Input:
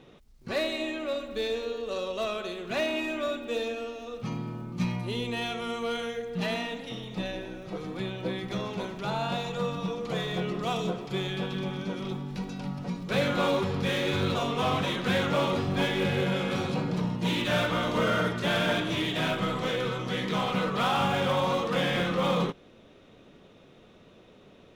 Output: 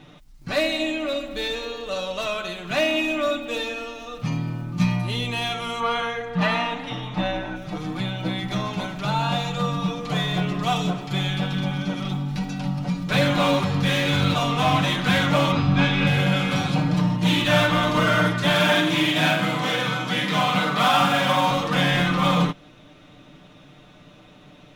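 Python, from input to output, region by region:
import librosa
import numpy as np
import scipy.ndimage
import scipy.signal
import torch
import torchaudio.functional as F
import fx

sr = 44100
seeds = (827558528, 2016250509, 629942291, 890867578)

y = fx.chain(x, sr, fx.lowpass(hz=3300.0, slope=6),
    fx.peak_eq(hz=1100.0, db=9.5, octaves=1.5), at=(5.8, 7.56))
y = fx.chain(y, sr, fx.lowpass(hz=4700.0, slope=12),
    fx.comb(ms=0.8, depth=0.34), at=(15.52, 16.07))
y = fx.chain(y, sr, fx.highpass(hz=160.0, slope=12),
    fx.high_shelf(hz=11000.0, db=3.5),
    fx.room_flutter(wall_m=7.8, rt60_s=0.43), at=(18.55, 21.51))
y = fx.peak_eq(y, sr, hz=440.0, db=-12.0, octaves=0.45)
y = y + 0.65 * np.pad(y, (int(6.7 * sr / 1000.0), 0))[:len(y)]
y = y * 10.0 ** (6.5 / 20.0)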